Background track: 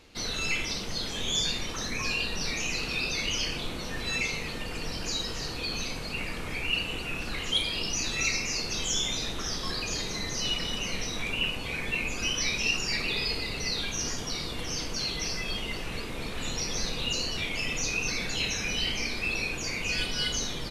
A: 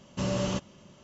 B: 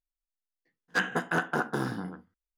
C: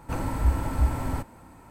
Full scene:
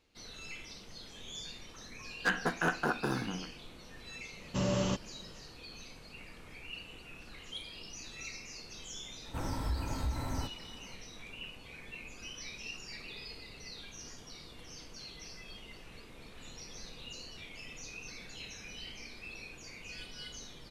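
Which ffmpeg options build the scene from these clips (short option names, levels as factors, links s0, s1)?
-filter_complex "[0:a]volume=0.15[s0];[3:a]alimiter=limit=0.112:level=0:latency=1:release=92[s1];[2:a]atrim=end=2.57,asetpts=PTS-STARTPTS,volume=0.708,afade=t=in:d=0.004:c=hsin,afade=t=out:st=2.566:d=0.004:c=hsin,adelay=1300[s2];[1:a]atrim=end=1.03,asetpts=PTS-STARTPTS,volume=0.794,afade=t=in:d=0.004:c=hsin,afade=t=out:st=1.026:d=0.004:c=hsin,adelay=192717S[s3];[s1]atrim=end=1.7,asetpts=PTS-STARTPTS,volume=0.447,afade=t=in:d=0.004:c=hsin,afade=t=out:st=1.696:d=0.004:c=hsin,adelay=9250[s4];[s0][s2][s3][s4]amix=inputs=4:normalize=0"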